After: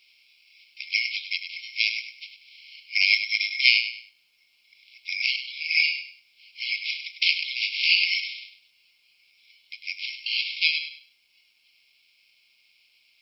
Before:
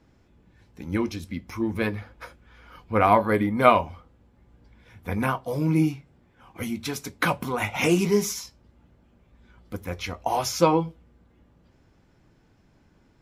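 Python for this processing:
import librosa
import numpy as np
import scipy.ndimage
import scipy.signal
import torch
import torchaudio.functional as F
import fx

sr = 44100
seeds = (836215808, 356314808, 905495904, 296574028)

p1 = fx.spec_clip(x, sr, under_db=25)
p2 = np.repeat(scipy.signal.resample_poly(p1, 1, 6), 6)[:len(p1)]
p3 = fx.rider(p2, sr, range_db=4, speed_s=0.5)
p4 = p2 + F.gain(torch.from_numpy(p3), 2.5).numpy()
p5 = fx.brickwall_bandpass(p4, sr, low_hz=2100.0, high_hz=5600.0)
p6 = fx.quant_dither(p5, sr, seeds[0], bits=12, dither='none')
p7 = p6 + fx.echo_feedback(p6, sr, ms=100, feedback_pct=28, wet_db=-9.5, dry=0)
p8 = fx.end_taper(p7, sr, db_per_s=380.0)
y = F.gain(torch.from_numpy(p8), -1.0).numpy()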